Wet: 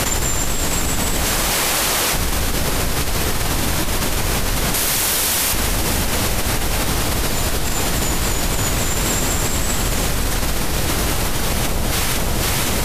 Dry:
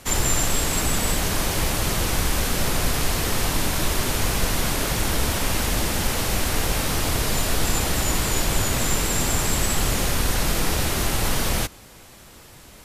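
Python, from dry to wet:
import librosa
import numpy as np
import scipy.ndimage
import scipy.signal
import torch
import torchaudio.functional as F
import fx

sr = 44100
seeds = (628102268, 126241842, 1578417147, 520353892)

y = fx.highpass(x, sr, hz=670.0, slope=6, at=(1.25, 2.14))
y = fx.tilt_eq(y, sr, slope=2.5, at=(4.74, 5.53))
y = fx.echo_alternate(y, sr, ms=254, hz=1100.0, feedback_pct=59, wet_db=-6.5)
y = fx.env_flatten(y, sr, amount_pct=100)
y = F.gain(torch.from_numpy(y), -2.5).numpy()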